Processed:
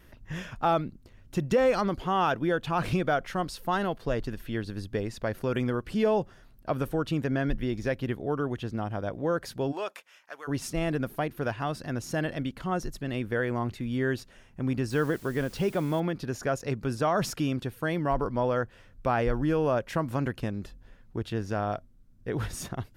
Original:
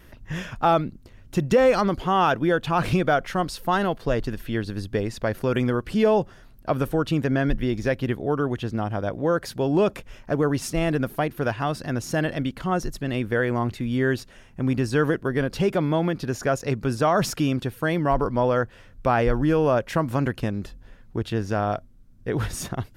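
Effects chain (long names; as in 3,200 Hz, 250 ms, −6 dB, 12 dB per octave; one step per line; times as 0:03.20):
0:09.71–0:10.47: high-pass filter 670 Hz → 1,500 Hz 12 dB per octave
0:14.90–0:16.00: bit-depth reduction 8 bits, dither triangular
level −5.5 dB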